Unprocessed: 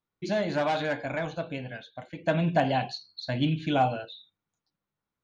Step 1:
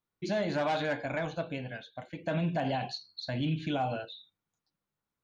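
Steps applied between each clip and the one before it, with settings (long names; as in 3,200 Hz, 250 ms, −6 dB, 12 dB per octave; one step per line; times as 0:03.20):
brickwall limiter −21.5 dBFS, peak gain reduction 8 dB
level −1.5 dB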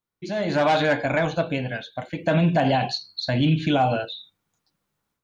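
automatic gain control gain up to 11 dB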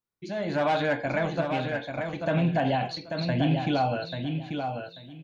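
dynamic equaliser 6,000 Hz, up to −5 dB, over −44 dBFS, Q 0.9
on a send: repeating echo 839 ms, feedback 20%, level −6 dB
on the sum: level −5 dB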